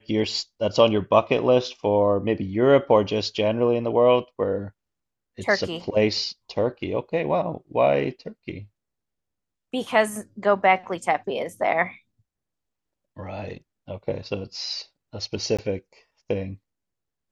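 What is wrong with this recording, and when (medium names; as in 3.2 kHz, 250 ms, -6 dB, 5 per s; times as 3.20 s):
15.57–15.59 s: dropout 16 ms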